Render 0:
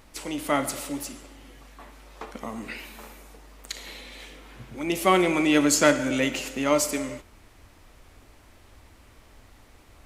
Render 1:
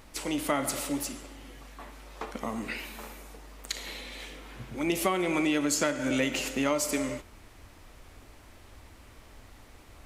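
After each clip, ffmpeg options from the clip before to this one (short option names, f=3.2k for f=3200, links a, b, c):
-af "acompressor=threshold=-24dB:ratio=12,volume=1dB"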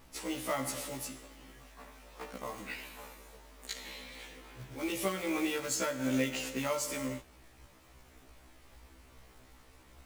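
-af "acrusher=bits=3:mode=log:mix=0:aa=0.000001,afftfilt=real='re*1.73*eq(mod(b,3),0)':imag='im*1.73*eq(mod(b,3),0)':win_size=2048:overlap=0.75,volume=-3.5dB"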